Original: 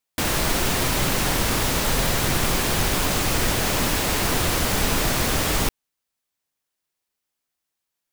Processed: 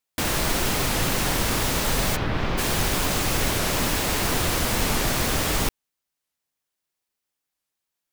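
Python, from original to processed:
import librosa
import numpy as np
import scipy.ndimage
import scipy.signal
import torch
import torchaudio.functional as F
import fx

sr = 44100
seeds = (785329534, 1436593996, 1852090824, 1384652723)

y = fx.air_absorb(x, sr, metres=250.0, at=(2.17, 2.57), fade=0.02)
y = fx.record_warp(y, sr, rpm=45.0, depth_cents=250.0)
y = y * librosa.db_to_amplitude(-1.5)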